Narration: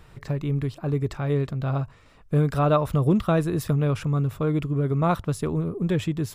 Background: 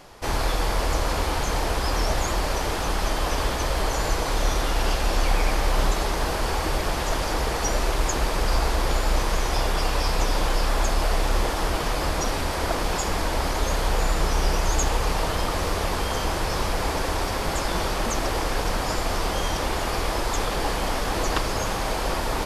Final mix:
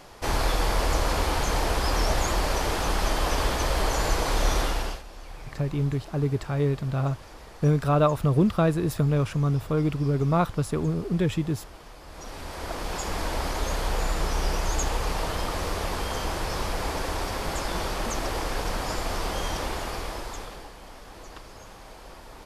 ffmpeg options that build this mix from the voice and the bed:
-filter_complex "[0:a]adelay=5300,volume=-0.5dB[a];[1:a]volume=16.5dB,afade=t=out:st=4.6:d=0.43:silence=0.0944061,afade=t=in:st=12.06:d=1.19:silence=0.141254,afade=t=out:st=19.57:d=1.13:silence=0.16788[b];[a][b]amix=inputs=2:normalize=0"

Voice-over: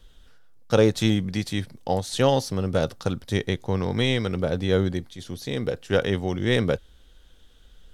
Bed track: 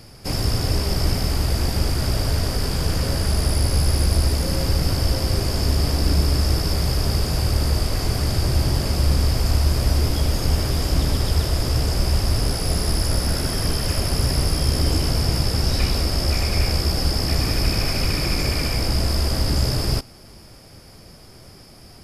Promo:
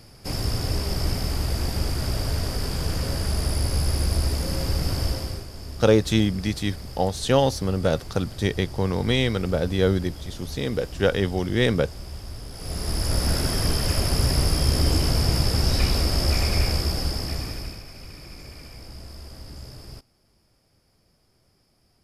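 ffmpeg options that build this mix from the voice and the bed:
-filter_complex "[0:a]adelay=5100,volume=1dB[a];[1:a]volume=11.5dB,afade=t=out:st=5.05:d=0.41:silence=0.237137,afade=t=in:st=12.51:d=0.78:silence=0.158489,afade=t=out:st=16.46:d=1.37:silence=0.112202[b];[a][b]amix=inputs=2:normalize=0"

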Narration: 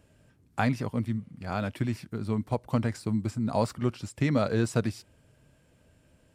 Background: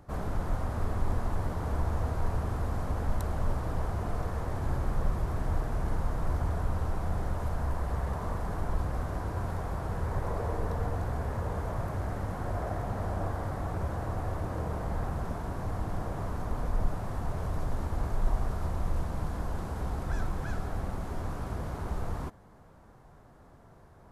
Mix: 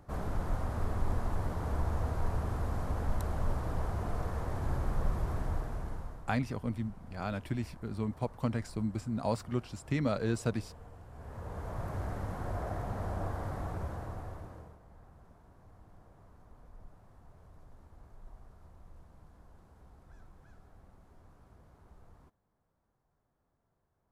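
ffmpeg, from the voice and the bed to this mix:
-filter_complex "[0:a]adelay=5700,volume=-5.5dB[a];[1:a]volume=13.5dB,afade=t=out:st=5.32:d=0.96:silence=0.141254,afade=t=in:st=11.1:d=0.86:silence=0.158489,afade=t=out:st=13.6:d=1.18:silence=0.0944061[b];[a][b]amix=inputs=2:normalize=0"

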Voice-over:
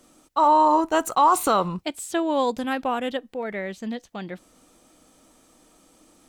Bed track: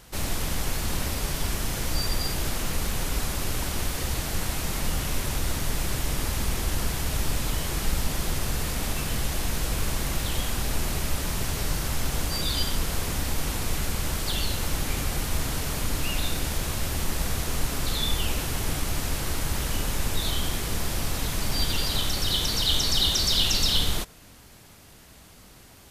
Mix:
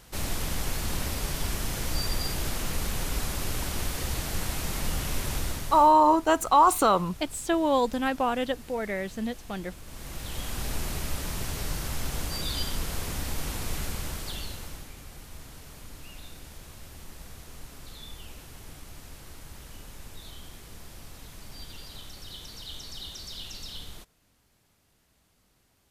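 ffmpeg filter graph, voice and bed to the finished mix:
-filter_complex "[0:a]adelay=5350,volume=-1dB[a];[1:a]volume=12dB,afade=t=out:st=5.38:d=0.56:silence=0.149624,afade=t=in:st=9.84:d=0.81:silence=0.188365,afade=t=out:st=13.82:d=1.1:silence=0.223872[b];[a][b]amix=inputs=2:normalize=0"

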